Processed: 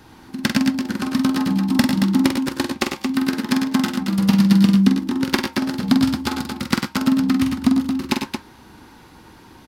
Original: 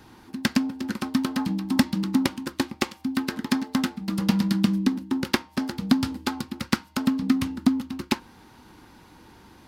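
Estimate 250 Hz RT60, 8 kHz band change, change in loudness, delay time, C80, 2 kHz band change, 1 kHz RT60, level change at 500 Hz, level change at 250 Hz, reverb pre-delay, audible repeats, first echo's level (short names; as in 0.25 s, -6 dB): none, +5.5 dB, +6.5 dB, 46 ms, none, +5.5 dB, none, +5.5 dB, +7.0 dB, none, 3, -6.0 dB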